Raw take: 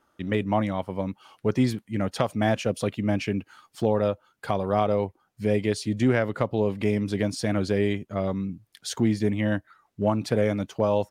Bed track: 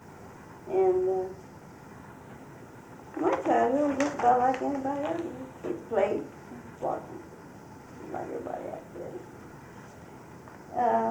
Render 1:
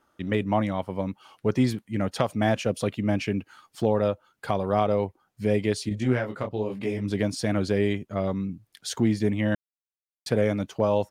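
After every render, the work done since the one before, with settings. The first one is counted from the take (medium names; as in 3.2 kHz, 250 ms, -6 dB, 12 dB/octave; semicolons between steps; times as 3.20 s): 5.89–7.11 s: detune thickener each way 29 cents; 9.55–10.26 s: mute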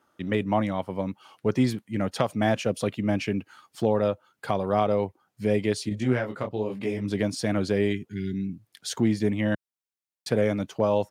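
high-pass 92 Hz; 7.95–8.50 s: spectral replace 430–1400 Hz after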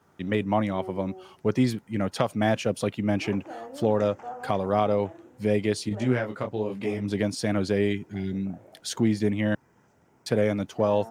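add bed track -15.5 dB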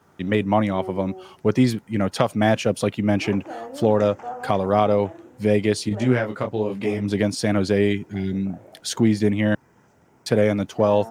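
trim +5 dB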